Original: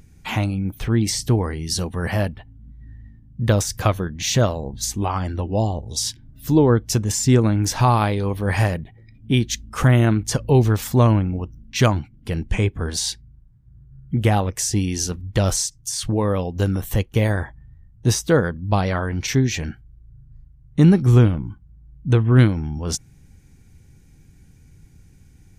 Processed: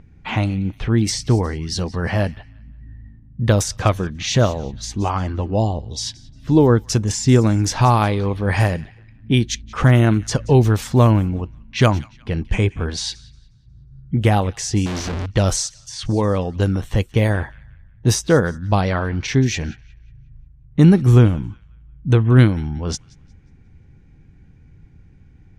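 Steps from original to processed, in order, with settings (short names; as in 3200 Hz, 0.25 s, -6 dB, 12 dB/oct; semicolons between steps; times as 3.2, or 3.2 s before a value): thin delay 0.18 s, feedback 38%, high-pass 1700 Hz, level -19 dB; 14.86–15.26 Schmitt trigger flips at -38 dBFS; low-pass opened by the level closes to 2300 Hz, open at -13 dBFS; gain +2 dB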